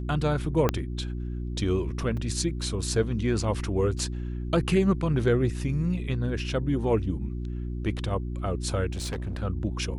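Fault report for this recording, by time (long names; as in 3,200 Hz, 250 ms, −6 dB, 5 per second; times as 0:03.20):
mains hum 60 Hz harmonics 6 −32 dBFS
0:00.69: click −9 dBFS
0:02.17: drop-out 4 ms
0:03.99: drop-out 2.3 ms
0:08.91–0:09.43: clipping −28 dBFS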